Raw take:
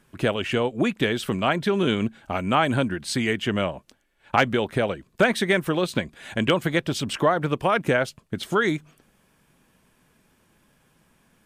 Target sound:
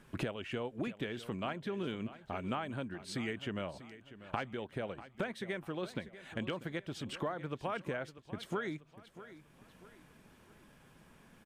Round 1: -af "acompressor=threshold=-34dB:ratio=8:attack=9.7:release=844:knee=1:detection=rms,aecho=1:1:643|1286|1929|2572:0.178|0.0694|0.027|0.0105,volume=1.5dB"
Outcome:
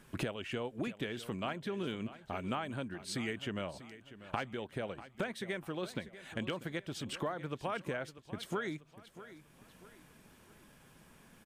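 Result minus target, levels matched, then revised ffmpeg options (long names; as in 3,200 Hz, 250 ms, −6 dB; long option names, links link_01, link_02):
8,000 Hz band +4.5 dB
-af "acompressor=threshold=-34dB:ratio=8:attack=9.7:release=844:knee=1:detection=rms,highshelf=frequency=5000:gain=-7,aecho=1:1:643|1286|1929|2572:0.178|0.0694|0.027|0.0105,volume=1.5dB"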